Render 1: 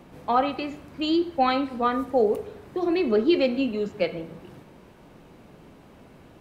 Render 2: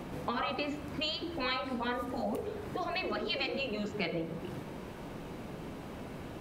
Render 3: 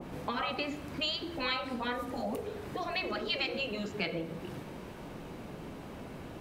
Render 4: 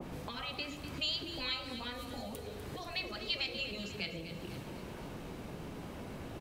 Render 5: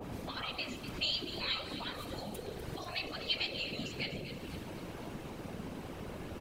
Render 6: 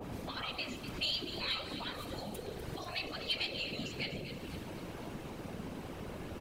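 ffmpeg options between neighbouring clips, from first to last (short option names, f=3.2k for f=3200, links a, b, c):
-af "afftfilt=real='re*lt(hypot(re,im),0.282)':imag='im*lt(hypot(re,im),0.282)':win_size=1024:overlap=0.75,acompressor=threshold=-45dB:ratio=2,volume=7dB"
-af "adynamicequalizer=threshold=0.00501:dfrequency=1600:dqfactor=0.7:tfrequency=1600:tqfactor=0.7:attack=5:release=100:ratio=0.375:range=1.5:mode=boostabove:tftype=highshelf,volume=-1dB"
-filter_complex "[0:a]acrossover=split=130|3000[a][b][c];[b]acompressor=threshold=-45dB:ratio=6[d];[a][d][c]amix=inputs=3:normalize=0,aecho=1:1:248|496|744|992|1240|1488:0.266|0.144|0.0776|0.0419|0.0226|0.0122,volume=1.5dB"
-af "afftfilt=real='hypot(re,im)*cos(2*PI*random(0))':imag='hypot(re,im)*sin(2*PI*random(1))':win_size=512:overlap=0.75,volume=7dB"
-af "asoftclip=type=tanh:threshold=-23.5dB"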